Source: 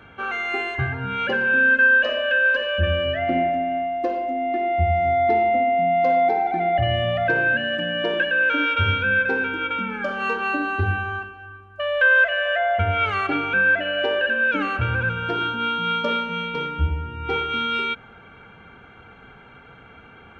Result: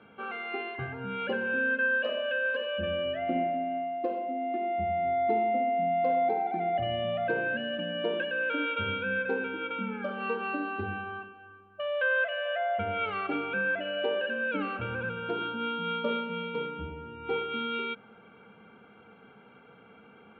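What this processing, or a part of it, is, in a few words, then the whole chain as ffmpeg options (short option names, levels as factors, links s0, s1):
kitchen radio: -af "highpass=160,equalizer=f=210:t=q:w=4:g=9,equalizer=f=470:t=q:w=4:g=6,equalizer=f=1800:t=q:w=4:g=-8,lowpass=f=3600:w=0.5412,lowpass=f=3600:w=1.3066,volume=0.376"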